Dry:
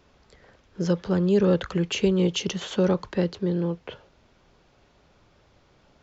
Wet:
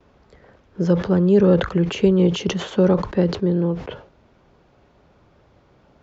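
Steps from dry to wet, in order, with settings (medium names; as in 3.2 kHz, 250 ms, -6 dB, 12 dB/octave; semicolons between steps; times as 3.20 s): high-pass 45 Hz 6 dB/octave; gate with hold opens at -53 dBFS; treble shelf 2.2 kHz -12 dB; decay stretcher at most 120 dB/s; trim +6 dB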